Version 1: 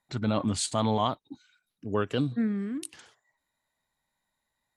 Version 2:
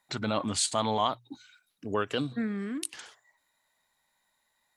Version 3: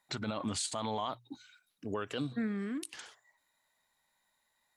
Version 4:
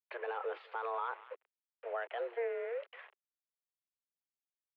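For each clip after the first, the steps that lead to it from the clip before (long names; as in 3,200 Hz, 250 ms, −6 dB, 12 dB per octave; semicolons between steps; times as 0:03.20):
low-shelf EQ 370 Hz −11 dB; mains-hum notches 60/120 Hz; in parallel at +3 dB: downward compressor, threshold −40 dBFS, peak gain reduction 15 dB
brickwall limiter −23 dBFS, peak gain reduction 8.5 dB; level −2.5 dB
feedback echo with a high-pass in the loop 196 ms, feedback 23%, high-pass 840 Hz, level −15 dB; bit reduction 8 bits; single-sideband voice off tune +230 Hz 180–2,400 Hz; level −1.5 dB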